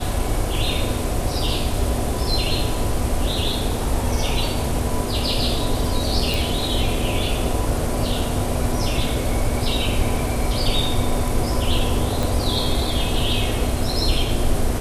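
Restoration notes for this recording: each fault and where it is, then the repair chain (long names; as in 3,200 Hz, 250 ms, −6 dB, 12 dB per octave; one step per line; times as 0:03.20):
0:06.34: click
0:12.23: click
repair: click removal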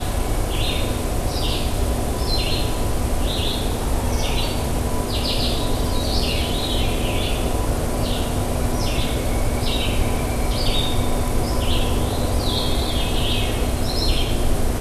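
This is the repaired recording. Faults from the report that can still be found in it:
none of them is left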